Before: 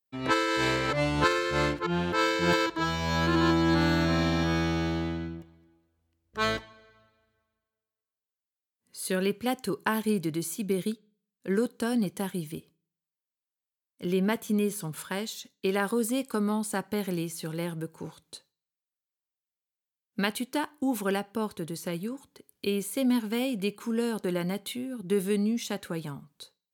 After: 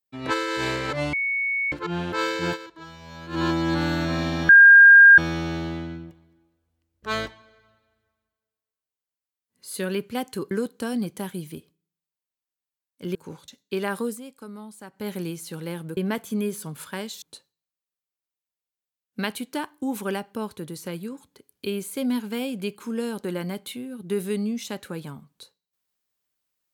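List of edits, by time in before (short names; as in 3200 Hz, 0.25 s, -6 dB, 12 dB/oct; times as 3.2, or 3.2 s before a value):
1.13–1.72 bleep 2220 Hz -22 dBFS
2.46–3.41 dip -14 dB, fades 0.12 s
4.49 add tone 1610 Hz -6.5 dBFS 0.69 s
9.82–11.51 cut
14.15–15.4 swap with 17.89–18.22
15.96–17.01 dip -12 dB, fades 0.17 s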